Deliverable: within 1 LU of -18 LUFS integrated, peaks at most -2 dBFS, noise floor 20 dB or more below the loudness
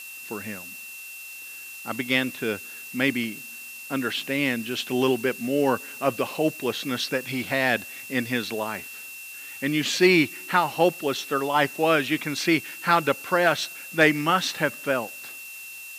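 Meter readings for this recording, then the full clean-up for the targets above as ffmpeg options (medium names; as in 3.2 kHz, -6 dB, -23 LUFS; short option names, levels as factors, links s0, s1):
steady tone 2.7 kHz; tone level -39 dBFS; noise floor -40 dBFS; noise floor target -45 dBFS; loudness -24.5 LUFS; peak level -6.0 dBFS; loudness target -18.0 LUFS
-> -af "bandreject=f=2700:w=30"
-af "afftdn=nr=6:nf=-40"
-af "volume=2.11,alimiter=limit=0.794:level=0:latency=1"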